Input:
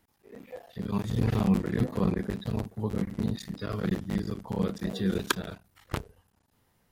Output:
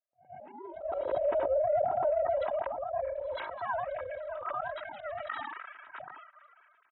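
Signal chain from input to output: formants replaced by sine waves; gate with hold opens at -51 dBFS; band-stop 3 kHz, Q 21; comb 3.1 ms, depth 77%; slow attack 106 ms; compression, threshold -27 dBFS, peak gain reduction 7.5 dB; ring modulator 300 Hz; band-pass sweep 530 Hz -> 1.4 kHz, 1.08–4.92 s; on a send: reverse echo 115 ms -15.5 dB; on the sum: decay stretcher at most 29 dB/s; trim +8 dB

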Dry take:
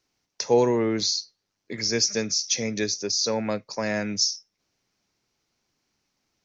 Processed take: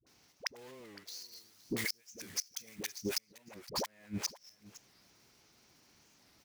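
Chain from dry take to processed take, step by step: block-companded coder 3-bit; dynamic bell 2.1 kHz, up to +6 dB, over -42 dBFS, Q 1.1; inverted gate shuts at -16 dBFS, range -40 dB; high-pass 45 Hz; phase dispersion highs, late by 67 ms, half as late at 490 Hz; 1.07–3.19 s: treble shelf 4.3 kHz +12 dB; compression 8:1, threshold -44 dBFS, peak gain reduction 25.5 dB; delay 516 ms -18.5 dB; warped record 45 rpm, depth 160 cents; trim +9.5 dB

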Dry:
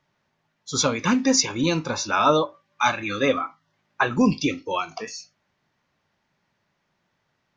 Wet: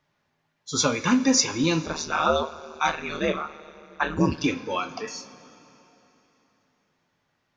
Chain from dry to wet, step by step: two-slope reverb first 0.24 s, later 3.4 s, from -18 dB, DRR 7 dB; 1.85–4.44 s: ring modulator 76 Hz; trim -1.5 dB

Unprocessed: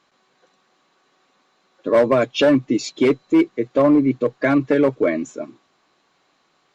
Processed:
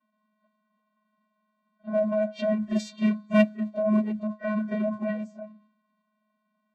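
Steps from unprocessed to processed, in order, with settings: de-hum 156.4 Hz, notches 10; vocoder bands 16, square 123 Hz; formant-preserving pitch shift +9.5 st; level-controlled noise filter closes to 2.5 kHz, open at -17 dBFS; on a send: reverse echo 32 ms -14 dB; on the sum: trim -7 dB

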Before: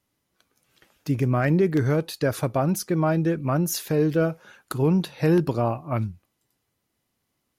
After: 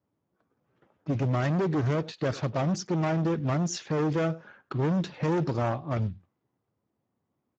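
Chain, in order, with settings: level-controlled noise filter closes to 1.1 kHz, open at -17 dBFS; on a send: delay 99 ms -24 dB; on the sum: hard clipper -24.5 dBFS, distortion -7 dB; Speex 13 kbps 16 kHz

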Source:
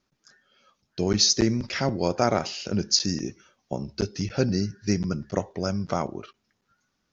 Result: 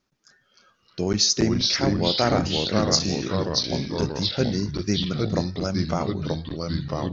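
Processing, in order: ever faster or slower copies 273 ms, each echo -2 st, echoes 3

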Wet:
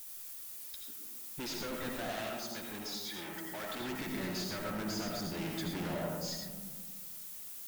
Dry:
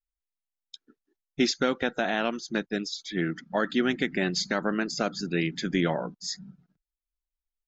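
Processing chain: added noise violet -45 dBFS; valve stage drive 39 dB, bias 0.3; 2.07–3.80 s: bass shelf 310 Hz -12 dB; bucket-brigade echo 110 ms, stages 1024, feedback 80%, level -23.5 dB; algorithmic reverb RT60 1.2 s, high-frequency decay 0.3×, pre-delay 45 ms, DRR 0 dB

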